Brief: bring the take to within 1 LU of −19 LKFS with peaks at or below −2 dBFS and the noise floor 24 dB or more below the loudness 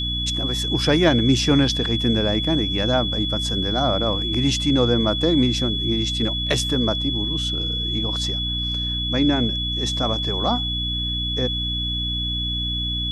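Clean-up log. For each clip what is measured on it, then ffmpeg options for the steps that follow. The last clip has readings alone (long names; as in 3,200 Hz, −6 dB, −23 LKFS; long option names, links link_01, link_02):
mains hum 60 Hz; hum harmonics up to 300 Hz; level of the hum −26 dBFS; interfering tone 3,400 Hz; level of the tone −24 dBFS; integrated loudness −20.5 LKFS; sample peak −4.0 dBFS; target loudness −19.0 LKFS
→ -af "bandreject=frequency=60:width_type=h:width=6,bandreject=frequency=120:width_type=h:width=6,bandreject=frequency=180:width_type=h:width=6,bandreject=frequency=240:width_type=h:width=6,bandreject=frequency=300:width_type=h:width=6"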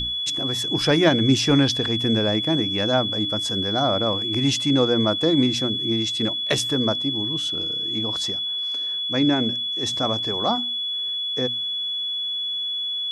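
mains hum none found; interfering tone 3,400 Hz; level of the tone −24 dBFS
→ -af "bandreject=frequency=3400:width=30"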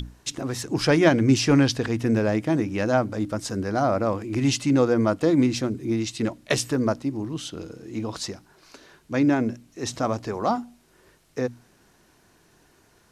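interfering tone none found; integrated loudness −24.0 LKFS; sample peak −5.5 dBFS; target loudness −19.0 LKFS
→ -af "volume=5dB,alimiter=limit=-2dB:level=0:latency=1"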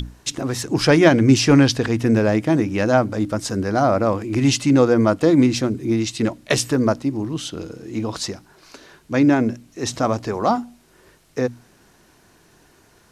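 integrated loudness −19.0 LKFS; sample peak −2.0 dBFS; background noise floor −55 dBFS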